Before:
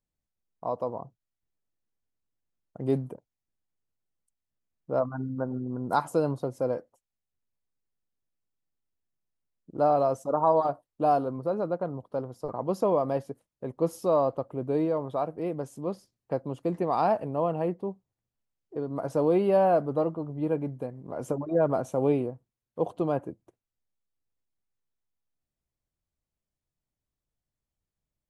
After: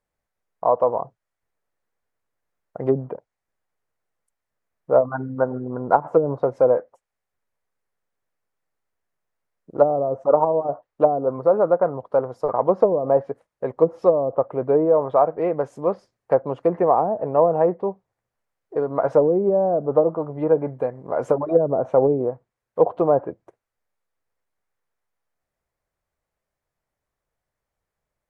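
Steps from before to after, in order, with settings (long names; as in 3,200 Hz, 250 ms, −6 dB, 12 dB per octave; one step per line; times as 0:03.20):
treble cut that deepens with the level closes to 330 Hz, closed at −20 dBFS
flat-topped bell 960 Hz +10.5 dB 2.7 octaves
level +2.5 dB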